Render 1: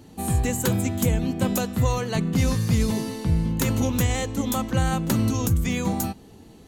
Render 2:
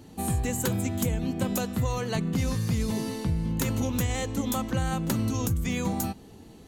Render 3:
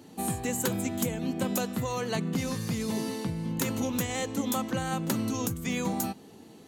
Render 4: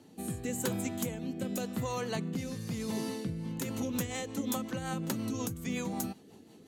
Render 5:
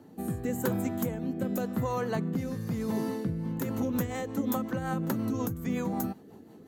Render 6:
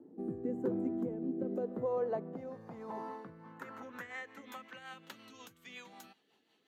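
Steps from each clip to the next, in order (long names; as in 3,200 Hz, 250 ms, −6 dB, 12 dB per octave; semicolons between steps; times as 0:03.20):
downward compressor 2.5 to 1, threshold −24 dBFS, peak gain reduction 6 dB; level −1 dB
high-pass filter 170 Hz 12 dB per octave
rotating-speaker cabinet horn 0.9 Hz, later 5.5 Hz, at 0:03.01; level −3 dB
flat-topped bell 4,900 Hz −10.5 dB 2.5 octaves; level +4.5 dB
band-pass filter sweep 350 Hz → 3,100 Hz, 0:01.31–0:05.06; level +1 dB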